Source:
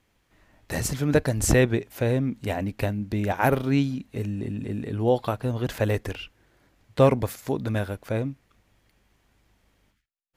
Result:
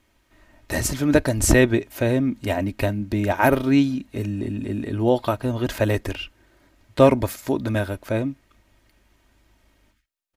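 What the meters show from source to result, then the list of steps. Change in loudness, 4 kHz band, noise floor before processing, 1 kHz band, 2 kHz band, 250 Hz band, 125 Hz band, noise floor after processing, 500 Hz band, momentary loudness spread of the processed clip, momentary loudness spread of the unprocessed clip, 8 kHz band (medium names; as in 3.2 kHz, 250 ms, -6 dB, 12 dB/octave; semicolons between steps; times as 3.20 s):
+3.5 dB, +4.5 dB, -70 dBFS, +3.5 dB, +5.0 dB, +5.5 dB, +1.0 dB, -65 dBFS, +3.5 dB, 11 LU, 11 LU, +4.5 dB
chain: comb 3.2 ms, depth 46%; trim +3.5 dB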